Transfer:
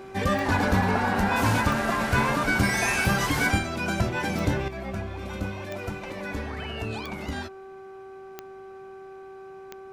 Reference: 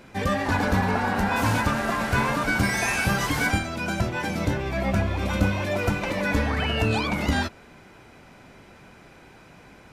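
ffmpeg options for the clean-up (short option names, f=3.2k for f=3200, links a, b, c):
-af "adeclick=t=4,bandreject=f=385:t=h:w=4,bandreject=f=770:t=h:w=4,bandreject=f=1.155k:t=h:w=4,bandreject=f=1.54k:t=h:w=4,asetnsamples=n=441:p=0,asendcmd='4.68 volume volume 9.5dB',volume=0dB"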